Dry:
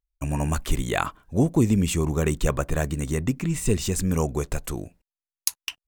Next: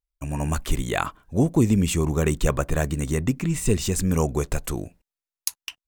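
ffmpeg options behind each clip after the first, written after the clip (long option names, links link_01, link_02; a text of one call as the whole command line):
ffmpeg -i in.wav -af "dynaudnorm=framelen=170:gausssize=5:maxgain=6.5dB,volume=-4dB" out.wav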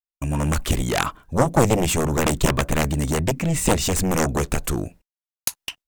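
ffmpeg -i in.wav -af "agate=range=-33dB:threshold=-46dB:ratio=3:detection=peak,aeval=exprs='0.531*(cos(1*acos(clip(val(0)/0.531,-1,1)))-cos(1*PI/2))+0.237*(cos(7*acos(clip(val(0)/0.531,-1,1)))-cos(7*PI/2))':channel_layout=same" out.wav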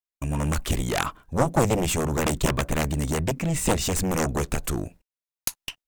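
ffmpeg -i in.wav -af "aeval=exprs='if(lt(val(0),0),0.708*val(0),val(0))':channel_layout=same,volume=-2dB" out.wav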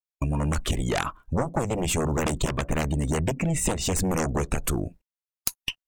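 ffmpeg -i in.wav -af "afftdn=noise_reduction=16:noise_floor=-39,acompressor=threshold=-31dB:ratio=6,volume=8dB" out.wav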